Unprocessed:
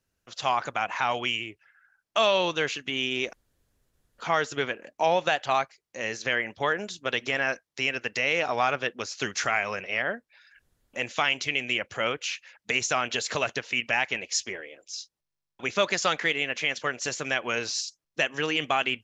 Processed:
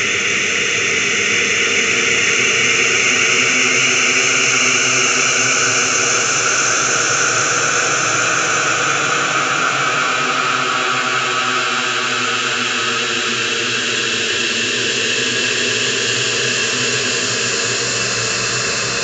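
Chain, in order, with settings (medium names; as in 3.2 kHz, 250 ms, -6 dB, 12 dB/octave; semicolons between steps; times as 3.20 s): reverse spectral sustain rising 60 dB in 1.43 s; Paulstretch 30×, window 0.25 s, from 12.62 s; high-order bell 750 Hz -10 dB 1.2 oct; trim +7.5 dB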